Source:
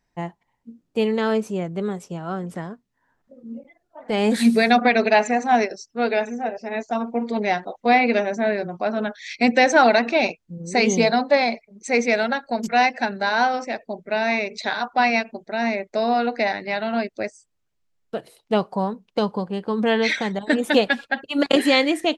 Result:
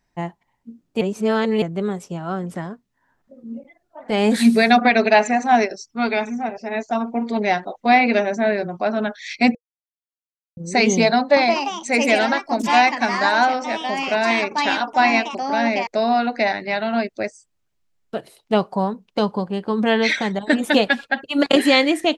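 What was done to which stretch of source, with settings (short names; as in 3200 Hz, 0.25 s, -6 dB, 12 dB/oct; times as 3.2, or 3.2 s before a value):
1.01–1.62 reverse
5.85–6.58 comb 0.9 ms, depth 46%
9.55–10.57 mute
11.17–16.53 echoes that change speed 0.195 s, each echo +3 st, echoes 2, each echo -6 dB
whole clip: notch 480 Hz, Q 12; gain +2.5 dB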